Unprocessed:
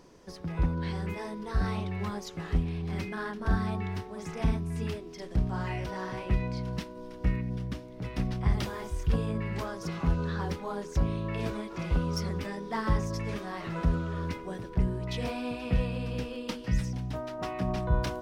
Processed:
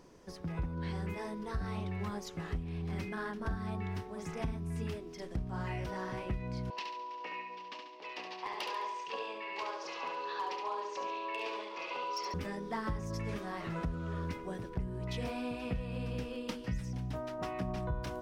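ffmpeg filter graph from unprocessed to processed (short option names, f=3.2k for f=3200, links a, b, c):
-filter_complex "[0:a]asettb=1/sr,asplit=3[a][b][c];[a]atrim=end=6.704[d];[b]atrim=start=6.7:end=12.34,asetpts=PTS-STARTPTS,afade=t=in:d=0.004:c=qsin,afade=t=out:st=5.636:d=0.004:c=qsin,highpass=f=450:w=0.5412,highpass=f=450:w=1.3066,equalizer=f=660:t=q:w=4:g=-4,equalizer=f=980:t=q:w=4:g=9,equalizer=f=1.4k:t=q:w=4:g=-8,equalizer=f=2.7k:t=q:w=4:g=9,equalizer=f=4.4k:t=q:w=4:g=5,lowpass=f=5.9k:w=0.5412,lowpass=f=5.9k:w=1.3066,volume=27.5dB,asoftclip=hard,volume=-27.5dB,aecho=1:1:70|140|210|280|350|420:0.562|0.259|0.119|0.0547|0.0252|0.0116,atrim=end_sample=248724[e];[c]atrim=start=12.336[f];[d][e]acrossfade=d=0.004:c1=hsin:c2=qsin[g];[g][f]acrossfade=d=0.004:c1=qsin:c2=hsin,equalizer=f=4.1k:w=1.5:g=-2,acompressor=threshold=-30dB:ratio=6,volume=-2.5dB"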